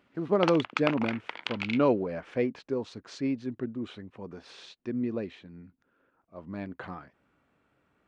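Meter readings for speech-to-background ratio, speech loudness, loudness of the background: 4.5 dB, -30.5 LUFS, -35.0 LUFS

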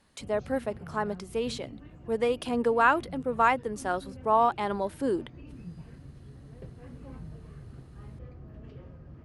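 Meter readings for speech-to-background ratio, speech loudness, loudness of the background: 18.5 dB, -28.5 LUFS, -47.0 LUFS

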